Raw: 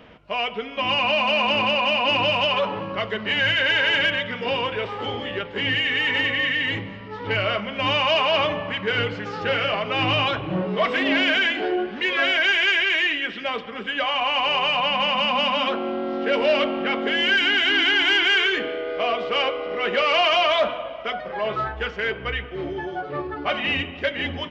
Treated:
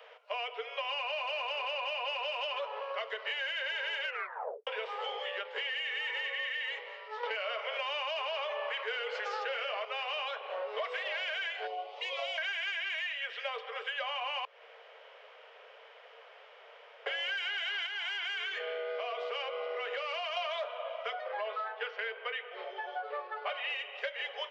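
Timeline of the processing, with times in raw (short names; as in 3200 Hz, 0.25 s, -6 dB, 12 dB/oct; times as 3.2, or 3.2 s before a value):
4.04 tape stop 0.63 s
7.23–9.85 fast leveller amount 70%
11.67–12.38 fixed phaser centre 670 Hz, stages 4
14.45–17.06 room tone
17.86–20.37 compressor 4:1, threshold -24 dBFS
21.24–23.7 LPF 4800 Hz 24 dB/oct
whole clip: steep high-pass 440 Hz 96 dB/oct; compressor 6:1, threshold -29 dBFS; gain -4.5 dB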